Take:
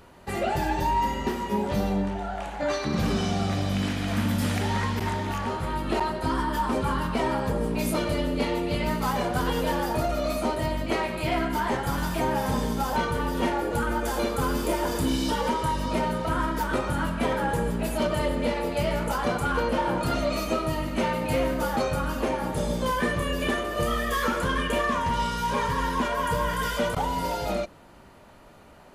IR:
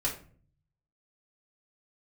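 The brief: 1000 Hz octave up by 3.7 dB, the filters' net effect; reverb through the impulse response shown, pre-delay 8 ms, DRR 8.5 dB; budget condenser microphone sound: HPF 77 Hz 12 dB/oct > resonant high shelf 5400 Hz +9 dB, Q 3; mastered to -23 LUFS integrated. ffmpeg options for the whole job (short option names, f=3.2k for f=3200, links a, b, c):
-filter_complex "[0:a]equalizer=f=1k:t=o:g=4.5,asplit=2[a][b];[1:a]atrim=start_sample=2205,adelay=8[c];[b][c]afir=irnorm=-1:irlink=0,volume=-14.5dB[d];[a][d]amix=inputs=2:normalize=0,highpass=77,highshelf=f=5.4k:t=q:w=3:g=9,volume=1.5dB"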